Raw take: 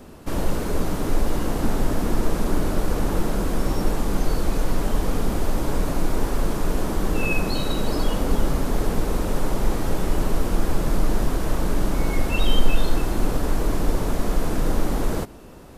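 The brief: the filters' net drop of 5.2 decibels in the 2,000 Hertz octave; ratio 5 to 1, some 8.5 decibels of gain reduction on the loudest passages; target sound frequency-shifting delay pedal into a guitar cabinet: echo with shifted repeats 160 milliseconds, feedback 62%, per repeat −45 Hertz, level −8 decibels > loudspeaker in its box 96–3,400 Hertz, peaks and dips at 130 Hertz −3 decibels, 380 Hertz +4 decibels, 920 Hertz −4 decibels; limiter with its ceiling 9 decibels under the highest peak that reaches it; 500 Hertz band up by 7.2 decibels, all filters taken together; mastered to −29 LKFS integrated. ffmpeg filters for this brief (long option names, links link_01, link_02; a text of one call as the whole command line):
ffmpeg -i in.wav -filter_complex "[0:a]equalizer=frequency=500:width_type=o:gain=7.5,equalizer=frequency=2000:width_type=o:gain=-7.5,acompressor=threshold=-17dB:ratio=5,alimiter=limit=-19dB:level=0:latency=1,asplit=9[link_01][link_02][link_03][link_04][link_05][link_06][link_07][link_08][link_09];[link_02]adelay=160,afreqshift=-45,volume=-8dB[link_10];[link_03]adelay=320,afreqshift=-90,volume=-12.2dB[link_11];[link_04]adelay=480,afreqshift=-135,volume=-16.3dB[link_12];[link_05]adelay=640,afreqshift=-180,volume=-20.5dB[link_13];[link_06]adelay=800,afreqshift=-225,volume=-24.6dB[link_14];[link_07]adelay=960,afreqshift=-270,volume=-28.8dB[link_15];[link_08]adelay=1120,afreqshift=-315,volume=-32.9dB[link_16];[link_09]adelay=1280,afreqshift=-360,volume=-37.1dB[link_17];[link_01][link_10][link_11][link_12][link_13][link_14][link_15][link_16][link_17]amix=inputs=9:normalize=0,highpass=96,equalizer=frequency=130:width_type=q:width=4:gain=-3,equalizer=frequency=380:width_type=q:width=4:gain=4,equalizer=frequency=920:width_type=q:width=4:gain=-4,lowpass=frequency=3400:width=0.5412,lowpass=frequency=3400:width=1.3066,volume=0.5dB" out.wav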